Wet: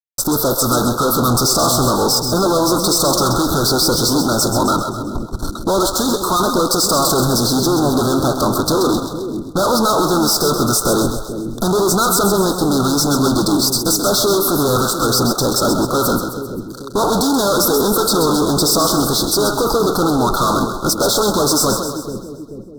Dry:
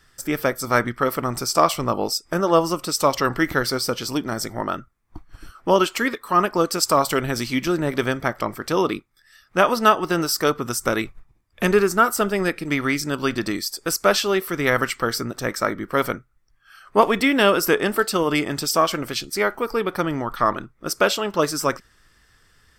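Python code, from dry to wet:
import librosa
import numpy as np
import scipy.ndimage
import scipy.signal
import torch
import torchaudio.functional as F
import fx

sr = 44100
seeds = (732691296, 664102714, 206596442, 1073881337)

y = fx.fuzz(x, sr, gain_db=38.0, gate_db=-43.0)
y = scipy.signal.sosfilt(scipy.signal.cheby1(4, 1.0, [1400.0, 3700.0], 'bandstop', fs=sr, output='sos'), y)
y = fx.echo_split(y, sr, split_hz=450.0, low_ms=436, high_ms=131, feedback_pct=52, wet_db=-7)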